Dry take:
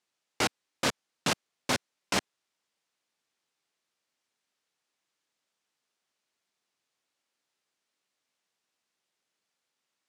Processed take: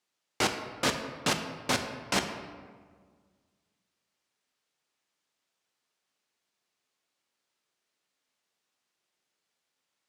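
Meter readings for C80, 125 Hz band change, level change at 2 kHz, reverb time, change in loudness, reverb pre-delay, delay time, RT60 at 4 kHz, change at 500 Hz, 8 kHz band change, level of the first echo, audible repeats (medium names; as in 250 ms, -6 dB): 9.0 dB, +1.5 dB, +1.0 dB, 1.7 s, +1.0 dB, 5 ms, no echo, 0.90 s, +1.5 dB, +0.5 dB, no echo, no echo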